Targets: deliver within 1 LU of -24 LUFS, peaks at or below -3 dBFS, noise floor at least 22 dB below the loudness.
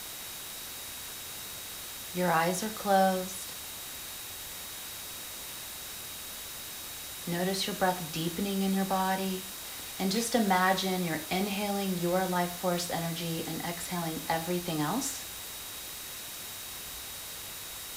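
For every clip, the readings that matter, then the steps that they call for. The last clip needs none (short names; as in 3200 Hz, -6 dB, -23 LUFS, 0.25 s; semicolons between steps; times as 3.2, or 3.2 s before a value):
steady tone 3800 Hz; tone level -49 dBFS; noise floor -42 dBFS; noise floor target -55 dBFS; loudness -32.5 LUFS; peak -12.5 dBFS; loudness target -24.0 LUFS
-> notch 3800 Hz, Q 30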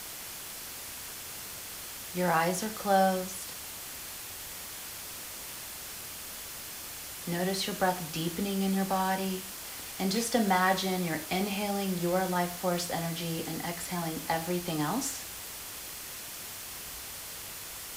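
steady tone none; noise floor -42 dBFS; noise floor target -55 dBFS
-> denoiser 13 dB, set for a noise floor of -42 dBFS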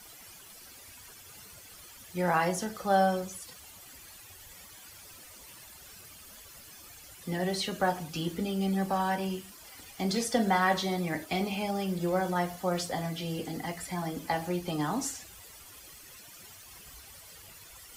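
noise floor -51 dBFS; noise floor target -53 dBFS
-> denoiser 6 dB, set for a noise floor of -51 dBFS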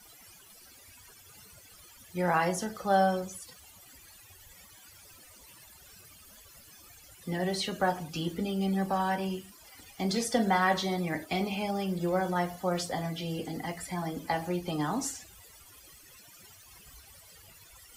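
noise floor -55 dBFS; loudness -31.0 LUFS; peak -13.0 dBFS; loudness target -24.0 LUFS
-> gain +7 dB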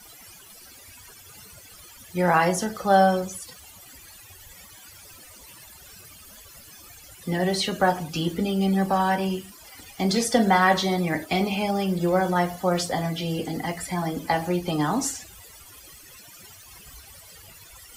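loudness -24.0 LUFS; peak -6.0 dBFS; noise floor -48 dBFS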